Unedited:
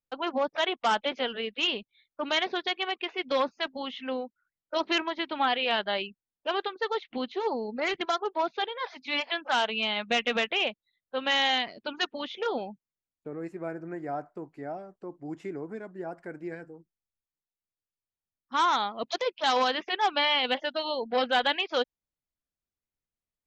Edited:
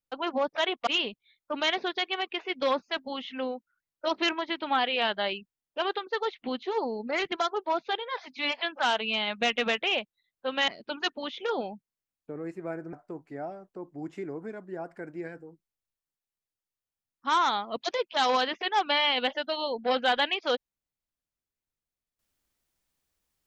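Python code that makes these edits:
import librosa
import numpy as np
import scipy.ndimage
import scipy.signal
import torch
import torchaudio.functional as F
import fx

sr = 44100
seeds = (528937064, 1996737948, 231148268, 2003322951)

y = fx.edit(x, sr, fx.cut(start_s=0.87, length_s=0.69),
    fx.cut(start_s=11.37, length_s=0.28),
    fx.cut(start_s=13.9, length_s=0.3), tone=tone)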